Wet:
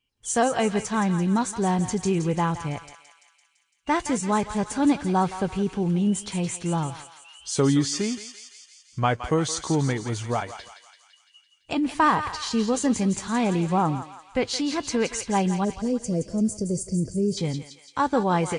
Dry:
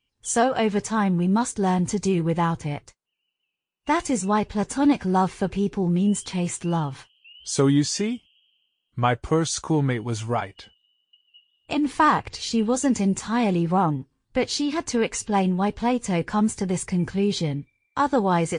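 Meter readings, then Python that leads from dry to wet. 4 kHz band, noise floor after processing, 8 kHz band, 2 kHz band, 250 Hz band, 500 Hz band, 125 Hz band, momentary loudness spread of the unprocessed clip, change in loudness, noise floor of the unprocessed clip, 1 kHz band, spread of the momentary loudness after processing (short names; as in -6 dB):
-1.0 dB, -63 dBFS, -0.5 dB, -1.0 dB, -1.5 dB, -1.5 dB, -1.5 dB, 8 LU, -1.5 dB, -79 dBFS, -1.5 dB, 10 LU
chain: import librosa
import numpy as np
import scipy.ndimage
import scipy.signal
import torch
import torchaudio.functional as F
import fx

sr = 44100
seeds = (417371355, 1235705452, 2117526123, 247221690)

y = fx.spec_box(x, sr, start_s=15.64, length_s=1.74, low_hz=670.0, high_hz=4400.0, gain_db=-24)
y = fx.echo_thinned(y, sr, ms=169, feedback_pct=66, hz=1200.0, wet_db=-8.0)
y = y * librosa.db_to_amplitude(-1.5)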